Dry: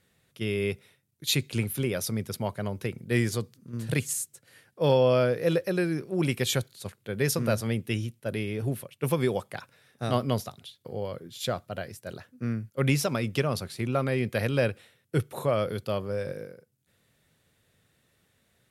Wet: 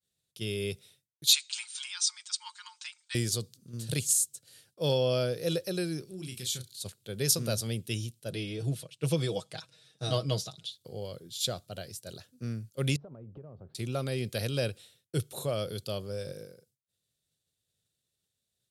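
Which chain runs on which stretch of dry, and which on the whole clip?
1.33–3.15 brick-wall FIR band-pass 860–9100 Hz + comb 5.6 ms, depth 95%
6.05–6.83 bell 680 Hz -13 dB 1.1 oct + compressor 2.5:1, threshold -37 dBFS + doubler 32 ms -6.5 dB
8.3–10.72 LPF 7200 Hz + comb 6.3 ms, depth 73%
12.96–13.75 LPF 1100 Hz 24 dB/oct + compressor 5:1, threshold -39 dBFS
whole clip: low shelf 190 Hz -5 dB; expander -59 dBFS; graphic EQ 250/500/1000/2000/4000/8000 Hz -6/-3/-10/-11/+6/+5 dB; gain +1 dB

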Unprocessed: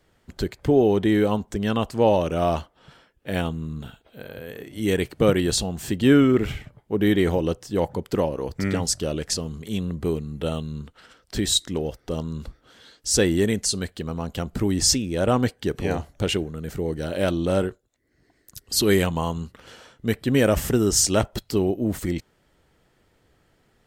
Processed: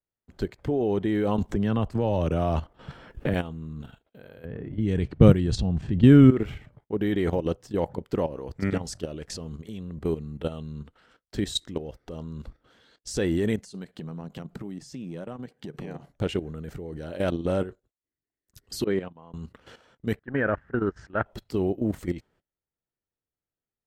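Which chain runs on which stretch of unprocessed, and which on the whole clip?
1.38–3.34 low shelf 140 Hz +11.5 dB + three-band squash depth 100%
4.45–6.31 tone controls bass +14 dB, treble +4 dB + low-pass opened by the level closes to 1500 Hz, open at -6 dBFS
13.6–16.12 resonant low shelf 110 Hz -9.5 dB, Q 3 + compressor 12:1, threshold -30 dBFS
18.84–19.34 expander -16 dBFS + BPF 140–4900 Hz + high shelf 3300 Hz -12 dB
20.19–21.26 gate -20 dBFS, range -21 dB + modulation noise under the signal 33 dB + synth low-pass 1600 Hz, resonance Q 5.3
whole clip: gate -52 dBFS, range -24 dB; high shelf 3800 Hz -9.5 dB; level quantiser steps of 12 dB

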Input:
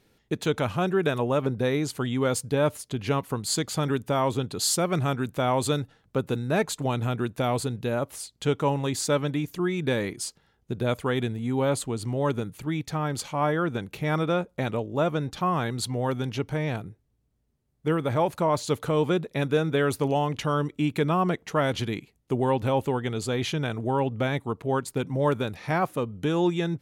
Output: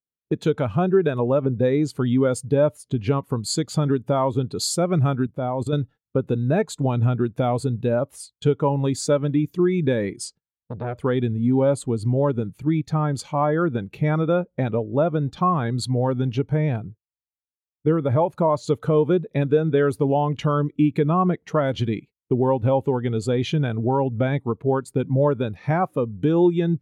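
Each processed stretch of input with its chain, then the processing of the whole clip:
5.25–5.73 tilt shelf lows +3.5 dB, about 1400 Hz + level quantiser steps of 15 dB
10.25–10.98 treble ducked by the level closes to 1700 Hz, closed at -21.5 dBFS + core saturation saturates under 1000 Hz
whole clip: gate -45 dBFS, range -19 dB; compressor 2.5:1, threshold -27 dBFS; spectral expander 1.5:1; gain +8.5 dB

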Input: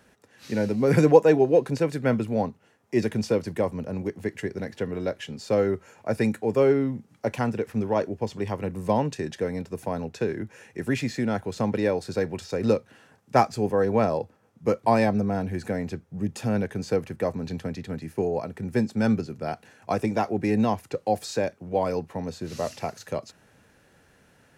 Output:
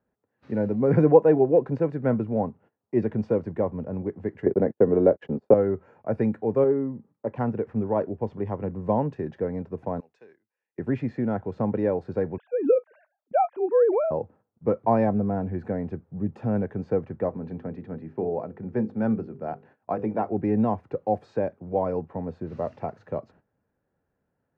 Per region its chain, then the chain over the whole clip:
4.46–5.54 gate -39 dBFS, range -44 dB + bell 440 Hz +12 dB 2.5 oct + three-band squash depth 40%
6.64–7.36 LPF 1700 Hz 6 dB/oct + low shelf 230 Hz -6 dB + notch comb 720 Hz
10–10.78 differentiator + notch 1400 Hz, Q 11
12.38–14.11 sine-wave speech + transient shaper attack +1 dB, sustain +6 dB
17.29–20.32 HPF 140 Hz 6 dB/oct + air absorption 71 m + notches 50/100/150/200/250/300/350/400/450/500 Hz
whole clip: gate -51 dBFS, range -17 dB; LPF 1100 Hz 12 dB/oct

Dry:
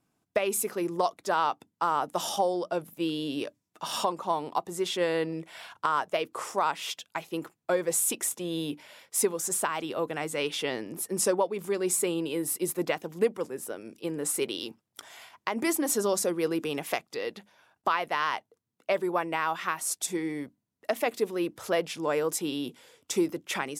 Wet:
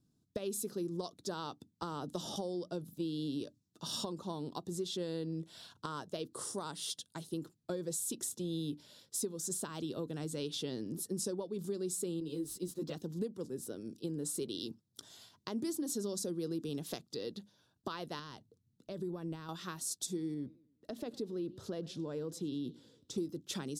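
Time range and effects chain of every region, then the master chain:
1.82–2.36 high shelf 3600 Hz -10 dB + three-band squash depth 100%
6.34–7.34 HPF 48 Hz + bell 9400 Hz +14.5 dB 0.28 oct + notch 2500 Hz, Q 11
12.2–12.95 median filter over 3 samples + ensemble effect
18.19–19.49 low shelf 200 Hz +11.5 dB + compressor 2.5:1, threshold -35 dBFS
20.34–23.18 compressor 1.5:1, threshold -35 dBFS + high shelf 4800 Hz -12 dB + warbling echo 0.101 s, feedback 41%, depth 179 cents, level -21.5 dB
whole clip: EQ curve 130 Hz 0 dB, 260 Hz -4 dB, 410 Hz -9 dB, 760 Hz -21 dB, 1600 Hz -19 dB, 2200 Hz -28 dB, 3900 Hz -5 dB, 14000 Hz -14 dB; compressor 4:1, threshold -40 dBFS; gain +5 dB

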